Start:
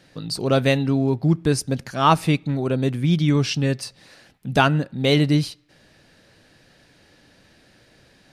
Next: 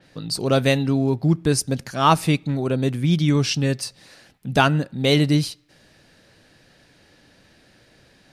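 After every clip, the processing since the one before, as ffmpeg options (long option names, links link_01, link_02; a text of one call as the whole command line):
ffmpeg -i in.wav -af "adynamicequalizer=threshold=0.0126:dfrequency=4500:dqfactor=0.7:tfrequency=4500:tqfactor=0.7:attack=5:release=100:ratio=0.375:range=2.5:mode=boostabove:tftype=highshelf" out.wav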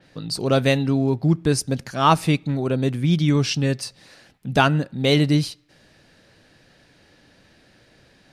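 ffmpeg -i in.wav -af "highshelf=frequency=8000:gain=-5" out.wav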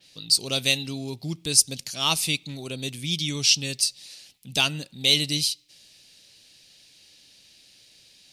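ffmpeg -i in.wav -af "aexciter=amount=11.6:drive=3:freq=2400,volume=-13dB" out.wav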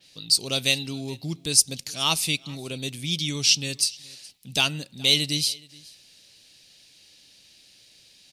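ffmpeg -i in.wav -af "aecho=1:1:421:0.0631" out.wav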